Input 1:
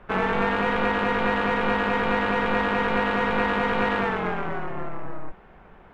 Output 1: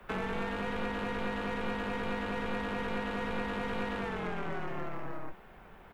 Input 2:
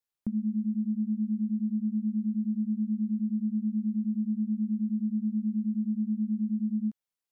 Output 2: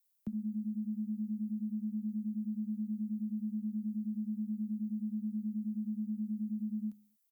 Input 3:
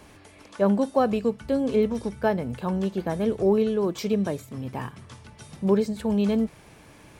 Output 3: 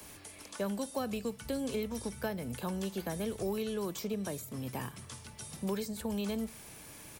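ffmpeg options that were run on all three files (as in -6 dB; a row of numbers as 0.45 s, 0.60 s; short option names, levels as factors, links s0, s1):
-filter_complex "[0:a]aemphasis=mode=production:type=75fm,acrossover=split=81|200|670|1400[s0][s1][s2][s3][s4];[s0]acompressor=threshold=0.0178:ratio=4[s5];[s1]acompressor=threshold=0.01:ratio=4[s6];[s2]acompressor=threshold=0.0178:ratio=4[s7];[s3]acompressor=threshold=0.00708:ratio=4[s8];[s4]acompressor=threshold=0.01:ratio=4[s9];[s5][s6][s7][s8][s9]amix=inputs=5:normalize=0,asplit=2[s10][s11];[s11]adelay=62,lowpass=f=2000:p=1,volume=0.0708,asplit=2[s12][s13];[s13]adelay=62,lowpass=f=2000:p=1,volume=0.54,asplit=2[s14][s15];[s15]adelay=62,lowpass=f=2000:p=1,volume=0.54,asplit=2[s16][s17];[s17]adelay=62,lowpass=f=2000:p=1,volume=0.54[s18];[s10][s12][s14][s16][s18]amix=inputs=5:normalize=0,volume=0.668"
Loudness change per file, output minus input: -12.0 LU, -7.5 LU, -12.0 LU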